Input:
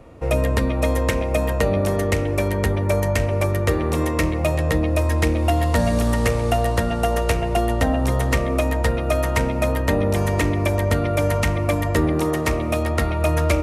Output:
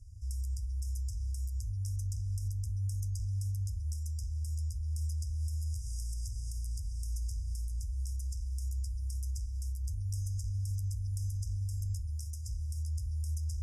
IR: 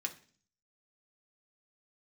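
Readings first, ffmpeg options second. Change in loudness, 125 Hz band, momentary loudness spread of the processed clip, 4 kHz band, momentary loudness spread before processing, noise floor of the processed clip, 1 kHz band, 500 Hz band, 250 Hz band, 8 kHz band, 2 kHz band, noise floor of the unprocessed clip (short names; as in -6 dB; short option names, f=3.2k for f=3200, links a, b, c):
-16.5 dB, -12.5 dB, 4 LU, -22.0 dB, 2 LU, -38 dBFS, under -40 dB, under -40 dB, under -40 dB, -13.0 dB, under -40 dB, -23 dBFS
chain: -filter_complex "[0:a]acrossover=split=130|3400[a][b][c];[a]acompressor=threshold=-25dB:ratio=4[d];[b]acompressor=threshold=-29dB:ratio=4[e];[c]acompressor=threshold=-39dB:ratio=4[f];[d][e][f]amix=inputs=3:normalize=0,acrossover=split=130|430|3700[g][h][i][j];[g]asoftclip=type=tanh:threshold=-29.5dB[k];[k][h][i][j]amix=inputs=4:normalize=0,equalizer=f=600:w=0.68:g=-4.5,alimiter=level_in=1dB:limit=-24dB:level=0:latency=1:release=108,volume=-1dB,lowpass=9.8k,afftfilt=real='re*(1-between(b*sr/4096,110,4800))':imag='im*(1-between(b*sr/4096,110,4800))':win_size=4096:overlap=0.75"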